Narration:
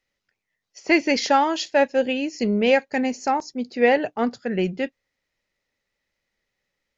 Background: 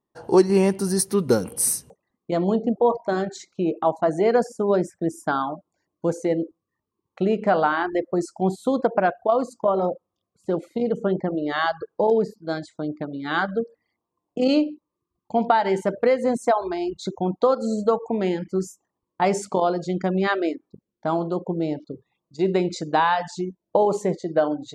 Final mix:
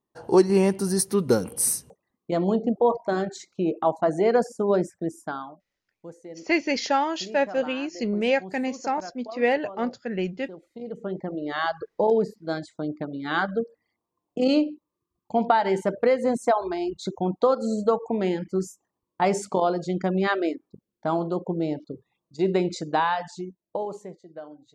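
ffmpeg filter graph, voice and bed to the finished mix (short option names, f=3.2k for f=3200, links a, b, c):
-filter_complex "[0:a]adelay=5600,volume=-4.5dB[a];[1:a]volume=15.5dB,afade=t=out:st=4.81:d=0.78:silence=0.141254,afade=t=in:st=10.64:d=1.3:silence=0.141254,afade=t=out:st=22.67:d=1.5:silence=0.125893[b];[a][b]amix=inputs=2:normalize=0"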